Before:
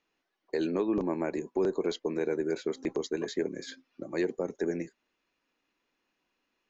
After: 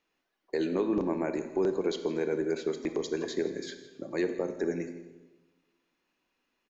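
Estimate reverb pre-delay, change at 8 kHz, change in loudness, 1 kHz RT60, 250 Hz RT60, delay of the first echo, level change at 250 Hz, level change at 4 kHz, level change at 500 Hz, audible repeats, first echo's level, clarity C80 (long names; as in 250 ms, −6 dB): 28 ms, can't be measured, +0.5 dB, 1.1 s, 1.4 s, 165 ms, +0.5 dB, +0.5 dB, +0.5 dB, 1, −18.0 dB, 11.0 dB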